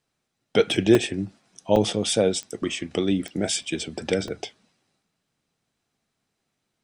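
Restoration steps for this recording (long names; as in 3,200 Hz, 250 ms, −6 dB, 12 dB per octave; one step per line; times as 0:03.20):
click removal
repair the gap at 0:00.95/0:01.76/0:03.63/0:04.28/0:04.90, 2.4 ms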